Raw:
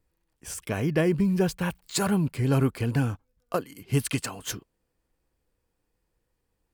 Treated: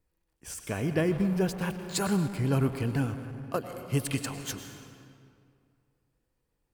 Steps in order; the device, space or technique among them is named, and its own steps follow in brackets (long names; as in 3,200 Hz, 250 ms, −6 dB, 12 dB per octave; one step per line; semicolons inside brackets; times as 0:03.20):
saturated reverb return (on a send at −5.5 dB: convolution reverb RT60 2.2 s, pre-delay 94 ms + soft clipping −25.5 dBFS, distortion −9 dB)
on the sum: level −3.5 dB